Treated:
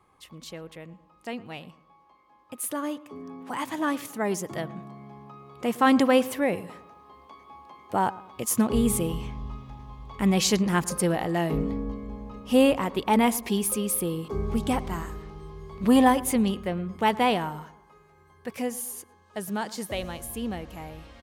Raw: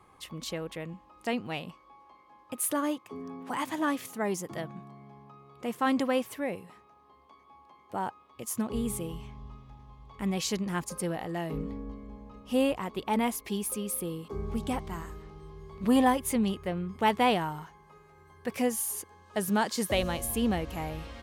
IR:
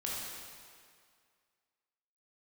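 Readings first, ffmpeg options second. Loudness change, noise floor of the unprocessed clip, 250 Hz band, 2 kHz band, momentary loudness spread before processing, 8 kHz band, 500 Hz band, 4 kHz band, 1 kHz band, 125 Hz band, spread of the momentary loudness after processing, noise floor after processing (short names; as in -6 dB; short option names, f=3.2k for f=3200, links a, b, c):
+5.5 dB, -59 dBFS, +5.0 dB, +4.0 dB, 17 LU, +4.0 dB, +5.0 dB, +4.0 dB, +4.0 dB, +5.5 dB, 21 LU, -59 dBFS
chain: -filter_complex "[0:a]dynaudnorm=f=300:g=31:m=16.5dB,asplit=2[a][b];[b]adelay=111,lowpass=f=1.6k:p=1,volume=-18dB,asplit=2[c][d];[d]adelay=111,lowpass=f=1.6k:p=1,volume=0.47,asplit=2[e][f];[f]adelay=111,lowpass=f=1.6k:p=1,volume=0.47,asplit=2[g][h];[h]adelay=111,lowpass=f=1.6k:p=1,volume=0.47[i];[a][c][e][g][i]amix=inputs=5:normalize=0,volume=-4.5dB"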